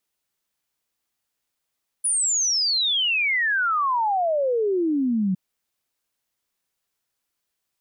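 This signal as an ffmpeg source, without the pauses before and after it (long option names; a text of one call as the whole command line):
ffmpeg -f lavfi -i "aevalsrc='0.112*clip(min(t,3.31-t)/0.01,0,1)*sin(2*PI*10000*3.31/log(180/10000)*(exp(log(180/10000)*t/3.31)-1))':duration=3.31:sample_rate=44100" out.wav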